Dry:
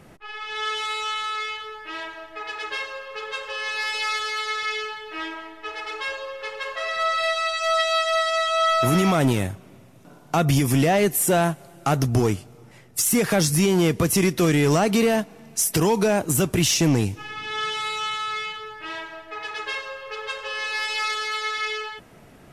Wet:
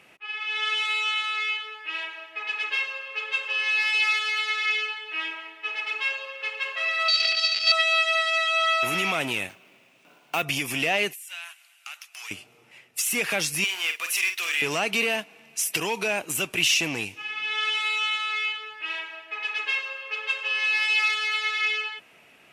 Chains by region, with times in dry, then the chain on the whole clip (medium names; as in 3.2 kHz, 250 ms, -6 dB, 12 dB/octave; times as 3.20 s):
7.08–7.72 s: dead-time distortion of 0.22 ms + resonant low-pass 4.7 kHz, resonance Q 11 + peaking EQ 1 kHz -10 dB 0.41 oct
9.49–10.43 s: high-pass 150 Hz + careless resampling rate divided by 3×, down none, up hold
11.13–12.31 s: Bessel high-pass 1.8 kHz, order 4 + compression 16:1, threshold -33 dBFS + overload inside the chain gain 28 dB
13.64–14.62 s: high-pass 1.2 kHz + modulation noise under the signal 19 dB + doubling 47 ms -7.5 dB
whole clip: high-pass 640 Hz 6 dB/octave; peaking EQ 2.6 kHz +14.5 dB 0.64 oct; trim -5 dB